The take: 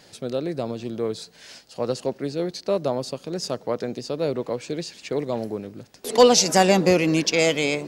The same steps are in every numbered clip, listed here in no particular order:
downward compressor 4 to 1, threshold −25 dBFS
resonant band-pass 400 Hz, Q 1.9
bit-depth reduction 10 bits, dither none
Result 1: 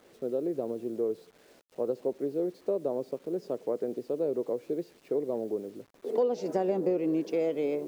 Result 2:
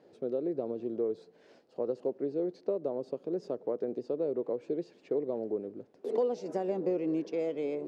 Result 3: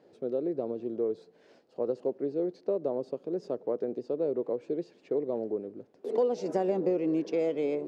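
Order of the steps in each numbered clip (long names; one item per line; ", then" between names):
resonant band-pass, then bit-depth reduction, then downward compressor
bit-depth reduction, then downward compressor, then resonant band-pass
bit-depth reduction, then resonant band-pass, then downward compressor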